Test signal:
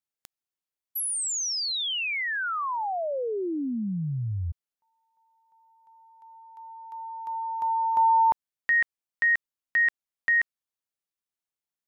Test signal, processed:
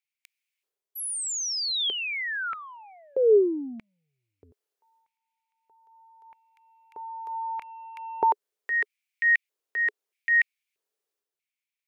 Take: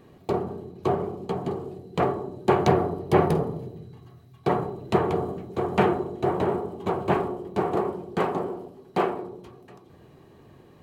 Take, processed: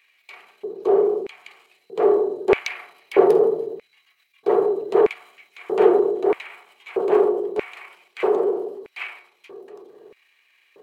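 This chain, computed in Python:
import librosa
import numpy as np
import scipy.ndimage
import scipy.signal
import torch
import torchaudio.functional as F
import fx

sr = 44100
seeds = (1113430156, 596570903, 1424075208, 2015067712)

y = fx.transient(x, sr, attack_db=-6, sustain_db=6)
y = fx.filter_lfo_highpass(y, sr, shape='square', hz=0.79, low_hz=420.0, high_hz=2300.0, q=6.2)
y = F.gain(torch.from_numpy(y), -2.0).numpy()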